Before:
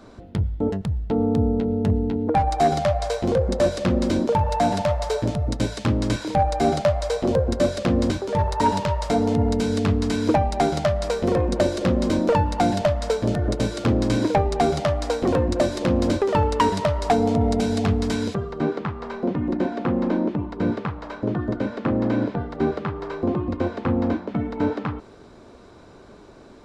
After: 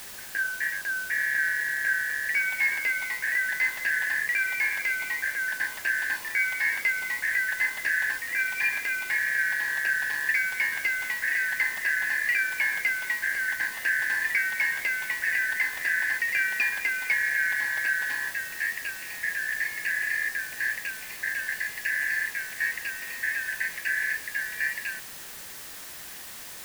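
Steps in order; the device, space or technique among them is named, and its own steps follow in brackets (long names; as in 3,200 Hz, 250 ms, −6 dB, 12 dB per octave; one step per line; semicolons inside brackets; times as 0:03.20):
split-band scrambled radio (band-splitting scrambler in four parts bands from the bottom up 3142; band-pass filter 350–3,100 Hz; white noise bed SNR 13 dB)
level −6 dB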